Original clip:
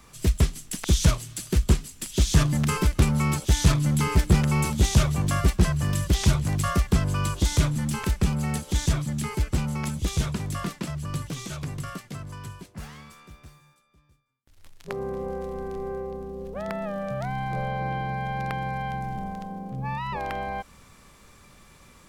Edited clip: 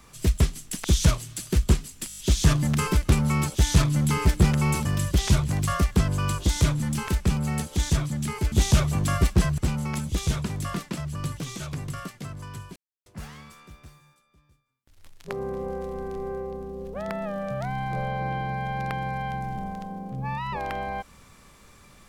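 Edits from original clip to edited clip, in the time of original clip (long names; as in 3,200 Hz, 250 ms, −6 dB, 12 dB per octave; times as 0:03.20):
0:02.08: stutter 0.02 s, 6 plays
0:04.75–0:05.81: move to 0:09.48
0:12.66: splice in silence 0.30 s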